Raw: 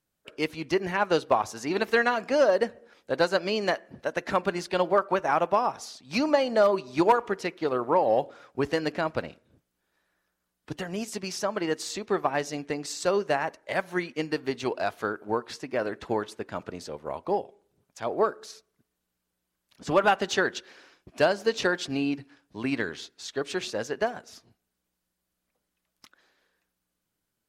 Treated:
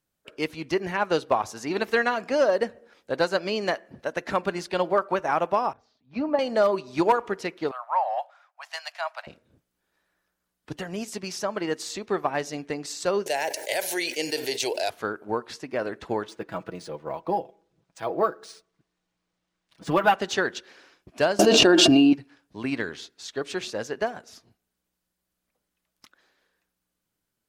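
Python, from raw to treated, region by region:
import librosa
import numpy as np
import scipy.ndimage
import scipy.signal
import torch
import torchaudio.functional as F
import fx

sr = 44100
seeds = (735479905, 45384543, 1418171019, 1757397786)

y = fx.chain(x, sr, fx.spacing_loss(db_at_10k=43),
    fx.notch_comb(f0_hz=180.0),
    fx.band_widen(depth_pct=40), at=(5.73, 6.39))
y = fx.chain(y, sr, fx.steep_highpass(hz=640.0, slope=72),
    fx.band_widen(depth_pct=70), at=(7.71, 9.27))
y = fx.chain(y, sr, fx.riaa(side='recording'),
    fx.fixed_phaser(hz=500.0, stages=4),
    fx.env_flatten(amount_pct=70), at=(13.26, 14.9))
y = fx.chain(y, sr, fx.comb(ms=6.1, depth=0.61),
    fx.resample_linear(factor=3), at=(16.29, 20.14))
y = fx.chain(y, sr, fx.peak_eq(hz=2000.0, db=-9.5, octaves=0.21),
    fx.small_body(hz=(320.0, 650.0, 2800.0), ring_ms=65, db=17),
    fx.env_flatten(amount_pct=100), at=(21.39, 22.13))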